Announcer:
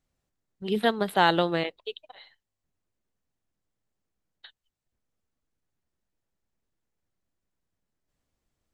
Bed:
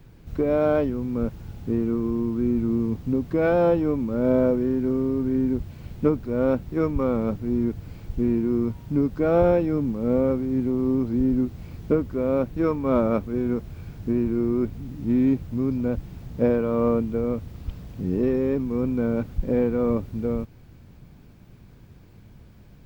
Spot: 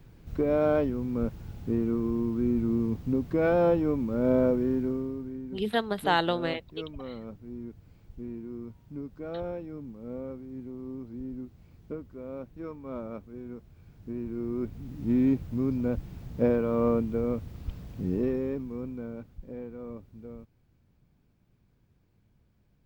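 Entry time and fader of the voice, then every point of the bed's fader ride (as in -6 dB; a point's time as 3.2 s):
4.90 s, -3.5 dB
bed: 4.77 s -3.5 dB
5.42 s -16.5 dB
13.76 s -16.5 dB
15.06 s -3.5 dB
18.07 s -3.5 dB
19.39 s -18 dB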